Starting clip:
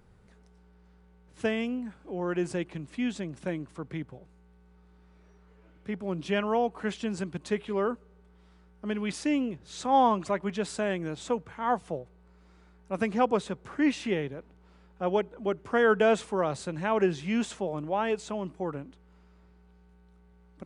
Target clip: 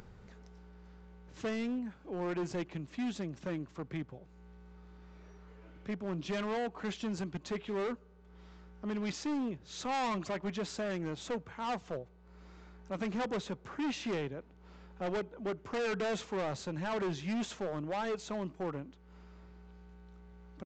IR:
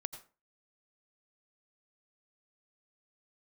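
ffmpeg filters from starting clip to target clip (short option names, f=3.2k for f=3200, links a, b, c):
-af "acompressor=mode=upward:threshold=-43dB:ratio=2.5,aresample=16000,asoftclip=type=hard:threshold=-29dB,aresample=44100,volume=-2.5dB"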